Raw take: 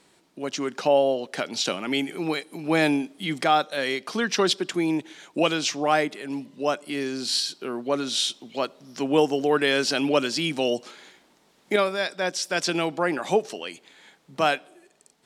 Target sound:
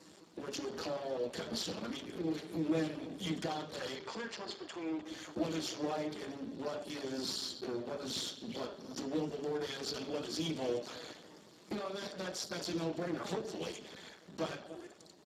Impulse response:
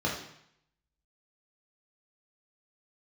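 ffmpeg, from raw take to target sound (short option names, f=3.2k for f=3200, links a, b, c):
-filter_complex "[0:a]aeval=exprs='if(lt(val(0),0),0.251*val(0),val(0))':c=same,adynamicequalizer=threshold=0.00398:dfrequency=3300:dqfactor=6.6:tfrequency=3300:tqfactor=6.6:attack=5:release=100:ratio=0.375:range=2:mode=boostabove:tftype=bell,acompressor=threshold=-33dB:ratio=12,asettb=1/sr,asplit=3[a][b][c];[a]atrim=end=1.714[d];[b]atrim=start=1.71:end=2.39,asetpts=PTS-STARTPTS,afade=t=in:d=0.004:c=qsin,afade=t=out:st=0.676:d=0.004:c=qsin,tremolo=f=28:d=0.667[e];[c]atrim=start=2.386[f];[d][e]acrossfade=d=0.004:c1=hsin:c2=qsin[g];[g][f]acrossfade=d=0.004:c1=qsin:c2=hsin,aeval=exprs='(tanh(126*val(0)+0.6)-tanh(0.6))/126':c=same,asplit=3[h][i][j];[h]afade=t=out:st=3.95:d=0.02[k];[i]highpass=f=280:w=0.5412,highpass=f=280:w=1.3066,equalizer=f=360:t=q:w=4:g=-8,equalizer=f=610:t=q:w=4:g=-4,equalizer=f=900:t=q:w=4:g=8,equalizer=f=1.3k:t=q:w=4:g=-4,equalizer=f=3.6k:t=q:w=4:g=-6,equalizer=f=5.8k:t=q:w=4:g=-9,lowpass=f=7.3k:w=0.5412,lowpass=f=7.3k:w=1.3066,afade=t=in:st=3.95:d=0.02,afade=t=out:st=5.03:d=0.02[l];[j]afade=t=in:st=5.03:d=0.02[m];[k][l][m]amix=inputs=3:normalize=0,asplit=2[n][o];[o]adelay=304,lowpass=f=1.1k:p=1,volume=-13.5dB,asplit=2[p][q];[q]adelay=304,lowpass=f=1.1k:p=1,volume=0.21[r];[n][p][r]amix=inputs=3:normalize=0,asplit=2[s][t];[1:a]atrim=start_sample=2205,adelay=6[u];[t][u]afir=irnorm=-1:irlink=0,volume=-11.5dB[v];[s][v]amix=inputs=2:normalize=0,volume=10dB" -ar 32000 -c:a libspeex -b:a 8k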